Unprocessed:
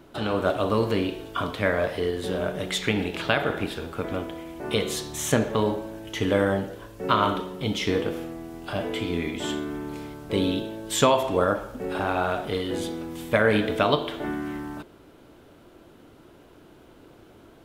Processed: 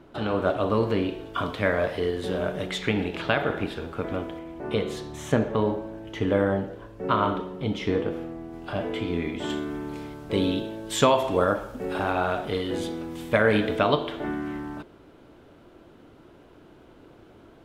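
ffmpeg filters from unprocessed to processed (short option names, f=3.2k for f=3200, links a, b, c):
-af "asetnsamples=n=441:p=0,asendcmd='1.34 lowpass f 5300;2.67 lowpass f 3000;4.39 lowpass f 1500;8.53 lowpass f 2500;9.5 lowpass f 6100;11.23 lowpass f 11000;12.11 lowpass f 6200;13.76 lowpass f 3600',lowpass=f=2.6k:p=1"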